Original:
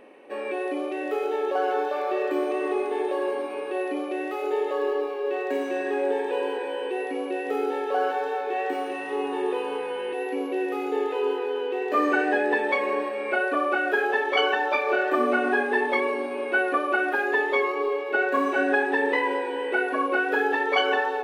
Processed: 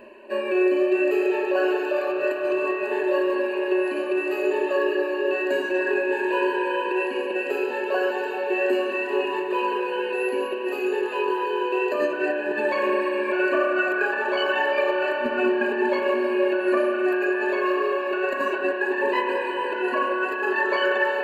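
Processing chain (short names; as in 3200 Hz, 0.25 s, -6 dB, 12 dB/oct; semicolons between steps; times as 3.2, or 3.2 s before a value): reverb removal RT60 0.86 s; ripple EQ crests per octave 1.4, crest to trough 17 dB; negative-ratio compressor -24 dBFS, ratio -0.5; diffused feedback echo 0.67 s, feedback 48%, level -12.5 dB; spring tank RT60 3.7 s, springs 30 ms, chirp 30 ms, DRR 1 dB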